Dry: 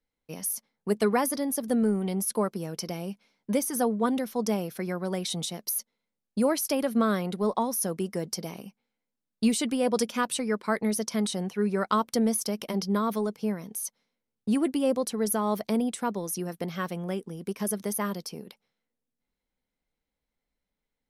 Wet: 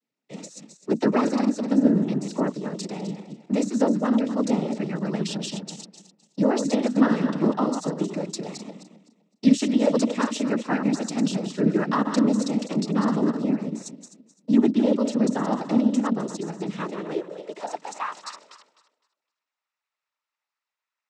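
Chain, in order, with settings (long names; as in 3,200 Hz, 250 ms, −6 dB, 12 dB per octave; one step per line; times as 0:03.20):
feedback delay that plays each chunk backwards 128 ms, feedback 48%, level −7 dB
cochlear-implant simulation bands 12
high-pass filter sweep 220 Hz → 1,100 Hz, 0:16.70–0:18.08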